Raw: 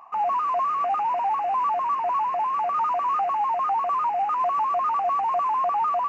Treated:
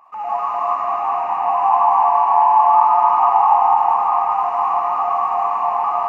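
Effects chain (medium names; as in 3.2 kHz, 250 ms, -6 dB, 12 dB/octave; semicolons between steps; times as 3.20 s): 1.45–3.62 s: peaking EQ 880 Hz +8.5 dB 0.55 oct; reverberation RT60 4.2 s, pre-delay 20 ms, DRR -6.5 dB; trim -3.5 dB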